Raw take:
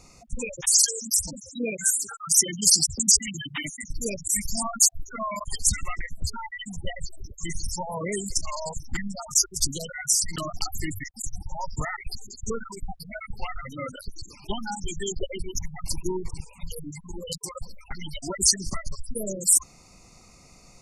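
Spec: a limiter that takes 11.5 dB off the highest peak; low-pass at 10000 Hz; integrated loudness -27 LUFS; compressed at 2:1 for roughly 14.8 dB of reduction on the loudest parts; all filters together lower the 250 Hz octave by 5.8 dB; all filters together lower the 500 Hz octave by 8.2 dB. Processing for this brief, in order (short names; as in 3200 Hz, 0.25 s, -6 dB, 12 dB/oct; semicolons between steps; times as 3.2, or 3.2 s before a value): LPF 10000 Hz; bell 250 Hz -6 dB; bell 500 Hz -9 dB; compressor 2:1, threshold -43 dBFS; gain +15 dB; limiter -13 dBFS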